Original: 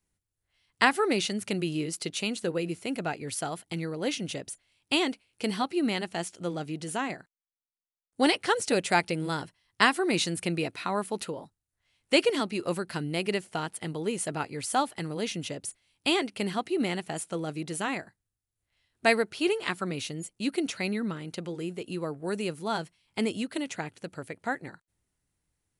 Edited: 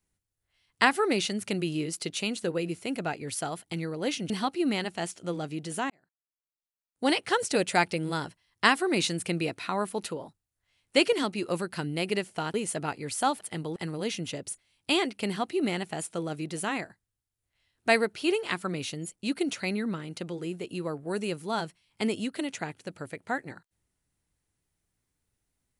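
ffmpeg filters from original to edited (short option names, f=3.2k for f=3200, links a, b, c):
-filter_complex "[0:a]asplit=6[a][b][c][d][e][f];[a]atrim=end=4.302[g];[b]atrim=start=5.468:end=7.07,asetpts=PTS-STARTPTS,afade=t=out:st=1.598:d=0.004:c=hsin[h];[c]atrim=start=7.07:end=13.712,asetpts=PTS-STARTPTS,afade=t=in:d=1.5[i];[d]atrim=start=14.058:end=14.932[j];[e]atrim=start=13.708:end=14.062[k];[f]atrim=start=14.928[l];[h][i]concat=n=2:v=0:a=1[m];[g][m]acrossfade=d=0.004:c1=hsin:c2=hsin[n];[n][j]acrossfade=d=0.004:c1=hsin:c2=hsin[o];[o][k]acrossfade=d=0.004:c1=hsin:c2=hsin[p];[p][l]acrossfade=d=0.004:c1=hsin:c2=hsin"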